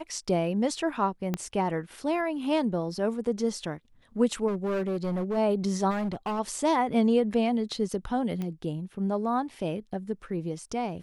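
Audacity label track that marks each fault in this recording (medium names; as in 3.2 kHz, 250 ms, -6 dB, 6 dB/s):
1.340000	1.340000	pop -15 dBFS
4.470000	5.380000	clipped -25 dBFS
5.900000	6.400000	clipped -26.5 dBFS
8.420000	8.420000	pop -22 dBFS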